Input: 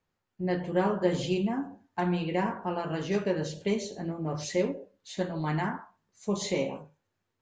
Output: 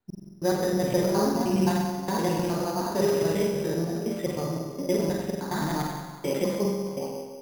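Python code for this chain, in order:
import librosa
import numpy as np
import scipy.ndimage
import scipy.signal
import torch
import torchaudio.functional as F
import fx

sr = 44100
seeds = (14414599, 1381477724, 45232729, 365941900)

p1 = fx.block_reorder(x, sr, ms=104.0, group=4)
p2 = fx.air_absorb(p1, sr, metres=380.0)
p3 = p2 + fx.echo_feedback(p2, sr, ms=183, feedback_pct=40, wet_db=-12.5, dry=0)
p4 = fx.rev_spring(p3, sr, rt60_s=1.2, pass_ms=(42, 47), chirp_ms=25, drr_db=-1.0)
p5 = np.repeat(p4[::8], 8)[:len(p4)]
y = p5 * 10.0 ** (1.5 / 20.0)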